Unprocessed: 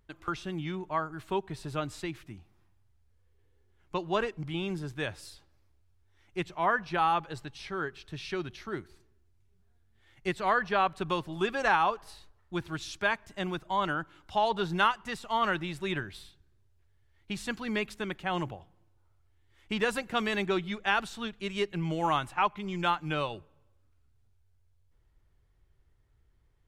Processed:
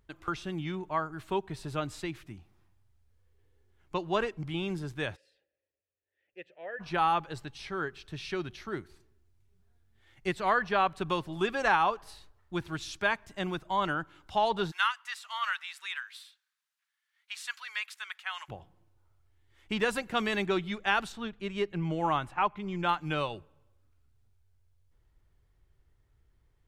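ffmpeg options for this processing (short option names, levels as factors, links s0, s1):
-filter_complex "[0:a]asplit=3[s0][s1][s2];[s0]afade=t=out:st=5.15:d=0.02[s3];[s1]asplit=3[s4][s5][s6];[s4]bandpass=f=530:t=q:w=8,volume=1[s7];[s5]bandpass=f=1840:t=q:w=8,volume=0.501[s8];[s6]bandpass=f=2480:t=q:w=8,volume=0.355[s9];[s7][s8][s9]amix=inputs=3:normalize=0,afade=t=in:st=5.15:d=0.02,afade=t=out:st=6.79:d=0.02[s10];[s2]afade=t=in:st=6.79:d=0.02[s11];[s3][s10][s11]amix=inputs=3:normalize=0,asplit=3[s12][s13][s14];[s12]afade=t=out:st=14.7:d=0.02[s15];[s13]highpass=f=1200:w=0.5412,highpass=f=1200:w=1.3066,afade=t=in:st=14.7:d=0.02,afade=t=out:st=18.48:d=0.02[s16];[s14]afade=t=in:st=18.48:d=0.02[s17];[s15][s16][s17]amix=inputs=3:normalize=0,asettb=1/sr,asplit=3[s18][s19][s20];[s18]atrim=end=21.124[s21];[s19]atrim=start=21.12:end=22.89,asetpts=PTS-STARTPTS,afade=t=in:d=0.004:c=qsin,afade=t=out:st=1.766:d=0.004:c=qsin,highshelf=f=3200:g=-9.5[s22];[s20]atrim=start=22.886[s23];[s21][s22]acrossfade=d=0.004:c1=hsin:c2=qsin[s24];[s24][s23]acrossfade=d=0.004:c1=qsin:c2=hsin"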